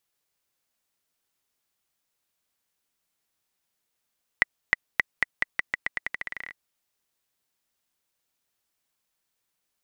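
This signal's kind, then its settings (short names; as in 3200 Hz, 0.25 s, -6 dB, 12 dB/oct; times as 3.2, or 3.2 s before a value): bouncing ball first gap 0.31 s, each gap 0.86, 1970 Hz, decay 19 ms -3 dBFS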